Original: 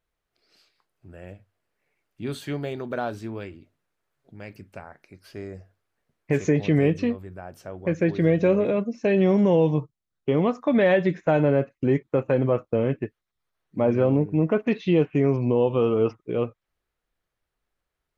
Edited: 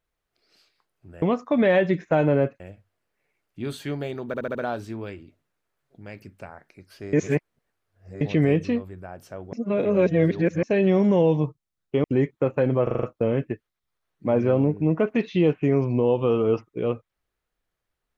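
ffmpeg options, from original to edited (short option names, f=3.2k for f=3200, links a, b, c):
-filter_complex "[0:a]asplit=17[a][b][c][d][e][f][g][h][i][j][k][l][m][n][o][p][q];[a]atrim=end=1.222[r];[b]atrim=start=10.378:end=11.762[s];[c]atrim=start=1.218:end=2.962[t];[d]atrim=start=2.888:end=2.962[u];[e]atrim=start=2.888:end=2.962[v];[f]atrim=start=2.888:end=2.962[w];[g]atrim=start=2.888:end=5.472[x];[h]atrim=start=5.468:end=6.552,asetpts=PTS-STARTPTS,areverse[y];[i]atrim=start=6.548:end=7.872[z];[j]atrim=start=7.868:end=8.972,asetpts=PTS-STARTPTS,areverse[aa];[k]atrim=start=8.968:end=10.382[ab];[l]atrim=start=11.758:end=12.592[ac];[m]atrim=start=12.548:end=12.592[ad];[n]atrim=start=12.548:end=12.592[ae];[o]atrim=start=12.548:end=12.592[af];[p]atrim=start=12.548:end=12.592[ag];[q]atrim=start=12.548[ah];[r][s]acrossfade=d=0.004:c1=hsin:c2=hsin[ai];[ai][t]acrossfade=d=0.004:c1=hsin:c2=hsin[aj];[aj][u]acrossfade=d=0.004:c1=hsin:c2=hsin[ak];[ak][v]acrossfade=d=0.004:c1=hsin:c2=hsin[al];[al][w]acrossfade=d=0.004:c1=hsin:c2=hsin[am];[am][x]acrossfade=d=0.004:c1=hsin:c2=hsin[an];[an][y]acrossfade=d=0.004:c1=hsin:c2=hsin[ao];[ao][z]acrossfade=d=0.004:c1=hsin:c2=hsin[ap];[ap][aa]acrossfade=d=0.004:c1=hsin:c2=hsin[aq];[aq][ab]acrossfade=d=0.004:c1=hsin:c2=hsin[ar];[ar][ac]acrossfade=d=0.004:c1=hsin:c2=hsin[as];[as][ad]acrossfade=d=0.004:c1=hsin:c2=hsin[at];[at][ae]acrossfade=d=0.004:c1=hsin:c2=hsin[au];[au][af]acrossfade=d=0.004:c1=hsin:c2=hsin[av];[av][ag]acrossfade=d=0.004:c1=hsin:c2=hsin[aw];[aw][ah]acrossfade=d=0.004:c1=hsin:c2=hsin"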